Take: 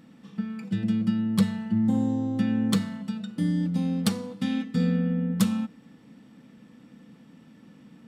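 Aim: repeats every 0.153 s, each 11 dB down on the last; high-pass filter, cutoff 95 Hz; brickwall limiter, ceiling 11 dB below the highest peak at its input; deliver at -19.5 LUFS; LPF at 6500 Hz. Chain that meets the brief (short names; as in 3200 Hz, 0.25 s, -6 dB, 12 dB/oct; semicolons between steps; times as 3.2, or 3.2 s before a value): HPF 95 Hz; LPF 6500 Hz; limiter -21.5 dBFS; feedback echo 0.153 s, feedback 28%, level -11 dB; gain +10 dB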